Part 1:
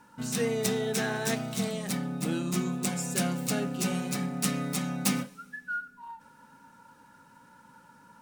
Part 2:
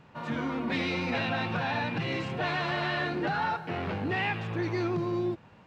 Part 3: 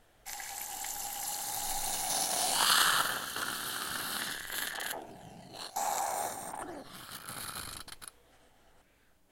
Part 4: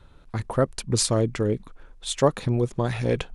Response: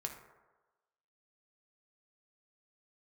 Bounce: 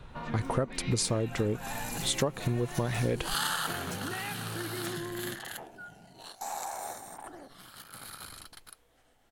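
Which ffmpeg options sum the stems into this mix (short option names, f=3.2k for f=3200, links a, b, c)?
-filter_complex "[0:a]aeval=exprs='val(0)*pow(10,-24*(0.5-0.5*cos(2*PI*2.1*n/s))/20)':c=same,adelay=100,volume=-14.5dB,asplit=2[a][b];[b]volume=-5dB[c];[1:a]acompressor=threshold=-37dB:ratio=4,volume=-1.5dB,asplit=2[d][e];[e]volume=-10dB[f];[2:a]adelay=650,volume=-4dB[g];[3:a]volume=2dB,asplit=2[h][i];[i]apad=whole_len=439369[j];[g][j]sidechaincompress=threshold=-30dB:ratio=8:attack=43:release=174[k];[4:a]atrim=start_sample=2205[l];[c][f]amix=inputs=2:normalize=0[m];[m][l]afir=irnorm=-1:irlink=0[n];[a][d][k][h][n]amix=inputs=5:normalize=0,acompressor=threshold=-25dB:ratio=10"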